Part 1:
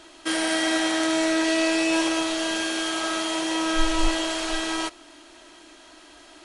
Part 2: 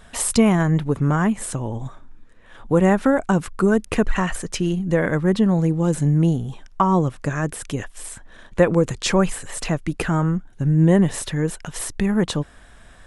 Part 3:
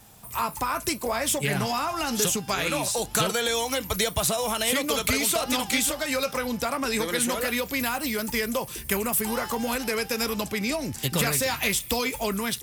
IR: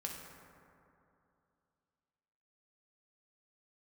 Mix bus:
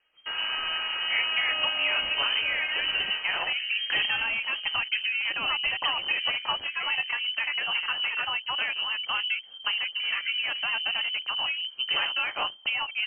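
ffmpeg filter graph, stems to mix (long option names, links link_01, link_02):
-filter_complex "[0:a]volume=-6.5dB,afade=type=out:start_time=2.97:duration=0.7:silence=0.446684[link_01];[1:a]volume=-19.5dB[link_02];[2:a]aemphasis=mode=reproduction:type=cd,adelay=750,volume=-1.5dB[link_03];[link_01][link_02][link_03]amix=inputs=3:normalize=0,afwtdn=0.0178,lowpass=frequency=2700:width_type=q:width=0.5098,lowpass=frequency=2700:width_type=q:width=0.6013,lowpass=frequency=2700:width_type=q:width=0.9,lowpass=frequency=2700:width_type=q:width=2.563,afreqshift=-3200"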